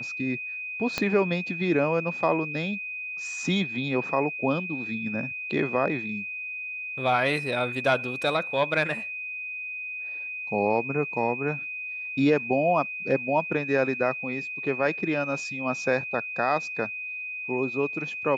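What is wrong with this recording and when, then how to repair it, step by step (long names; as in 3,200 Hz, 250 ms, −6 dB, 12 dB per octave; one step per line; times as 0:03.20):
whistle 2,500 Hz −32 dBFS
0:00.98: click −11 dBFS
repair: click removal
notch filter 2,500 Hz, Q 30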